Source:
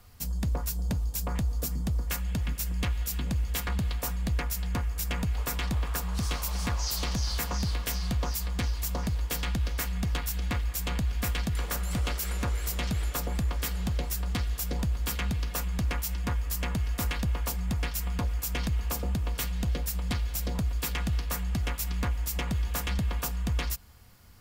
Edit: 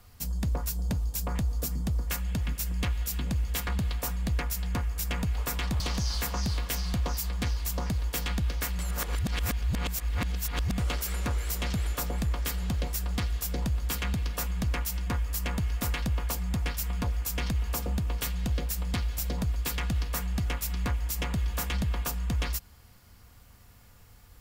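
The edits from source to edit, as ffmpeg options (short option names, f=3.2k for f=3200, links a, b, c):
-filter_complex "[0:a]asplit=4[a][b][c][d];[a]atrim=end=5.802[e];[b]atrim=start=6.968:end=9.962[f];[c]atrim=start=9.958:end=11.952,asetpts=PTS-STARTPTS,areverse[g];[d]atrim=start=11.948[h];[e][f]acrossfade=d=0.004:c1=hsin:c2=hsin[i];[i][g]acrossfade=d=0.004:c1=hsin:c2=hsin[j];[j][h]acrossfade=d=0.004:c1=hsin:c2=hsin"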